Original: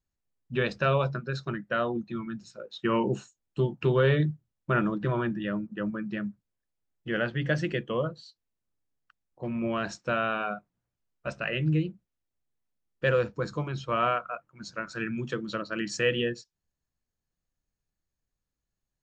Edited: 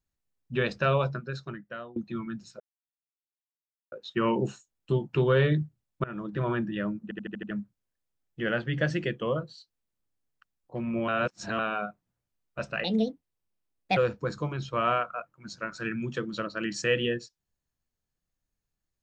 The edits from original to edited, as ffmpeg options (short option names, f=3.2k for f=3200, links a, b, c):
-filter_complex "[0:a]asplit=14[a][b][c][d][e][f][g][h][i][j][k][l][m][n];[a]atrim=end=1.96,asetpts=PTS-STARTPTS,afade=t=out:st=1:d=0.96:silence=0.0891251[o];[b]atrim=start=1.96:end=2.6,asetpts=PTS-STARTPTS,afade=t=in:d=0.004:c=hsin:silence=0.0891251,afade=t=out:st=0.636:d=0.004:c=hsin,apad=pad_dur=1.32[p];[c]atrim=start=2.6:end=4.72,asetpts=PTS-STARTPTS,afade=t=in:d=0.004:c=hsin,afade=t=out:st=2.116:d=0.004:c=hsin:silence=0.0707946[q];[d]atrim=start=4.72:end=5.792,asetpts=PTS-STARTPTS,afade=t=in:d=0.45:silence=0.0707946[r];[e]atrim=start=5.708:end=5.792[s];[f]atrim=start=5.708:end=5.792[t];[g]atrim=start=5.708:end=5.792[u];[h]atrim=start=5.708:end=5.792[v];[i]atrim=start=5.708:end=5.792[w];[j]atrim=start=6.188:end=9.762[x];[k]atrim=start=9.758:end=10.272,asetpts=PTS-STARTPTS,areverse[y];[l]atrim=start=10.268:end=11.524[z];[m]atrim=start=11.52:end=13.12,asetpts=PTS-STARTPTS,asetrate=62622,aresample=44100,atrim=end_sample=49690,asetpts=PTS-STARTPTS[aa];[n]atrim=start=13.116[ab];[o][p][q][r]concat=n=4:v=0:a=1[ac];[ac][s]acrossfade=d=0.004:c1=hsin:c2=hsin[ad];[ad][t]acrossfade=d=0.004:c1=hsin:c2=hsin[ae];[ae][u]acrossfade=d=0.004:c1=hsin:c2=hsin[af];[af][v]acrossfade=d=0.004:c1=hsin:c2=hsin[ag];[ag][w]acrossfade=d=0.004:c1=hsin:c2=hsin[ah];[ah][x]acrossfade=d=0.004:c1=hsin:c2=hsin[ai];[ai][y]acrossfade=d=0.004:c1=hsin:c2=hsin[aj];[aj][z]acrossfade=d=0.004:c1=hsin:c2=hsin[ak];[ak][aa]acrossfade=d=0.004:c1=hsin:c2=hsin[al];[al][ab]acrossfade=d=0.004:c1=hsin:c2=hsin"